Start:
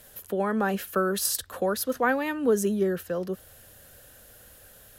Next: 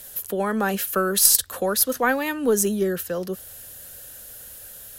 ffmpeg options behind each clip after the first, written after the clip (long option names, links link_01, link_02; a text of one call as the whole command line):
ffmpeg -i in.wav -af "highshelf=frequency=3600:gain=11,aeval=exprs='0.708*(cos(1*acos(clip(val(0)/0.708,-1,1)))-cos(1*PI/2))+0.02*(cos(4*acos(clip(val(0)/0.708,-1,1)))-cos(4*PI/2))':channel_layout=same,volume=2dB" out.wav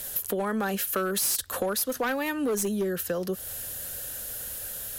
ffmpeg -i in.wav -af "volume=17.5dB,asoftclip=hard,volume=-17.5dB,acompressor=threshold=-31dB:ratio=6,volume=5dB" out.wav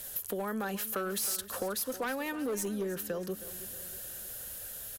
ffmpeg -i in.wav -af "aecho=1:1:317|634|951|1268:0.178|0.0854|0.041|0.0197,volume=-6.5dB" out.wav